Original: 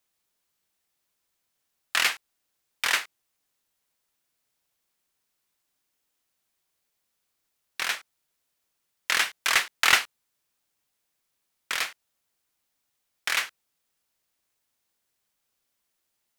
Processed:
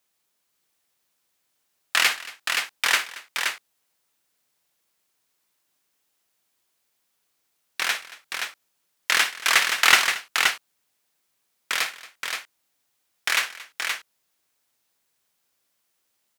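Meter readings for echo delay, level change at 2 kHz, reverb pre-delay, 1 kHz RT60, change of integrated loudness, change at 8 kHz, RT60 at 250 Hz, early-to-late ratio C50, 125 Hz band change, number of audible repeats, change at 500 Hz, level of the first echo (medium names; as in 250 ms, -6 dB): 58 ms, +5.0 dB, no reverb, no reverb, +2.5 dB, +5.0 dB, no reverb, no reverb, no reading, 3, +4.5 dB, -14.5 dB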